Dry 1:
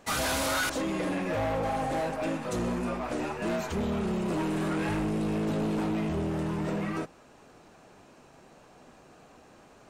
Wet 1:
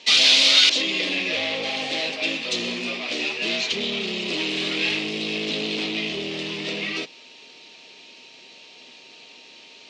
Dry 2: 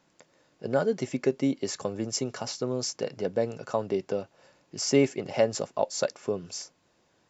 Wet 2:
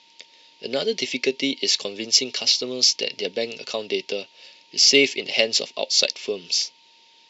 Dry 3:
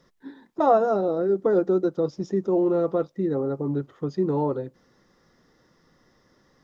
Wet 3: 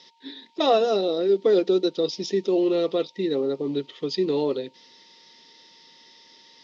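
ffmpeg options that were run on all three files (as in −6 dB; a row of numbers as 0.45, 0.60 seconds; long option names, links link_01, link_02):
-af "aeval=exprs='val(0)+0.002*sin(2*PI*920*n/s)':channel_layout=same,highpass=230,equalizer=frequency=250:width_type=q:width=4:gain=3,equalizer=frequency=420:width_type=q:width=4:gain=5,equalizer=frequency=890:width_type=q:width=4:gain=-6,lowpass=frequency=4200:width=0.5412,lowpass=frequency=4200:width=1.3066,aexciter=amount=13.4:drive=7.1:freq=2300,volume=-1dB"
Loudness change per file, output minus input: +9.0, +8.5, +0.5 LU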